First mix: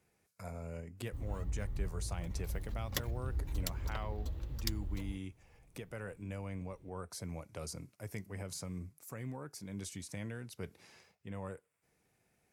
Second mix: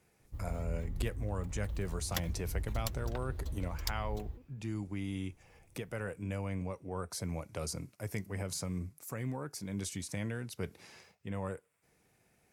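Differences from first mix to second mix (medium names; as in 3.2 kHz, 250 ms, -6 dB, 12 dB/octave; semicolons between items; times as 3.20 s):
speech +5.0 dB; background: entry -0.80 s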